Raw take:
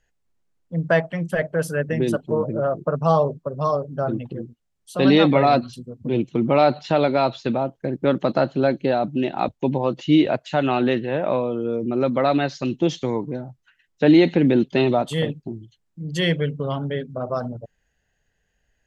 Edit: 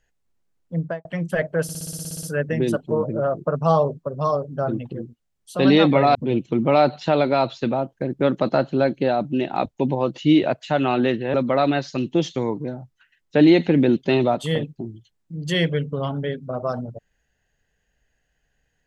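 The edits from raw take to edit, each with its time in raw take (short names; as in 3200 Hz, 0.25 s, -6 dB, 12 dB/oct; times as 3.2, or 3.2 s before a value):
0.75–1.05 studio fade out
1.63 stutter 0.06 s, 11 plays
5.55–5.98 cut
11.17–12.01 cut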